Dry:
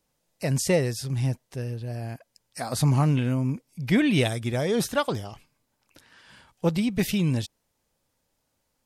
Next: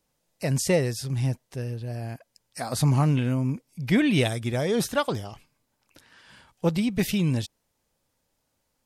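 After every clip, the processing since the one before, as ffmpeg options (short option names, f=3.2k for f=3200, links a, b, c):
-af anull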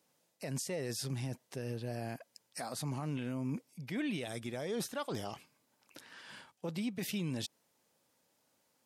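-af "highpass=180,areverse,acompressor=threshold=-33dB:ratio=6,areverse,alimiter=level_in=5.5dB:limit=-24dB:level=0:latency=1:release=102,volume=-5.5dB,volume=1dB"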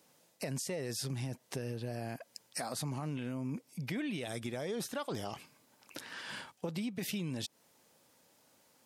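-af "acompressor=threshold=-44dB:ratio=4,volume=8dB"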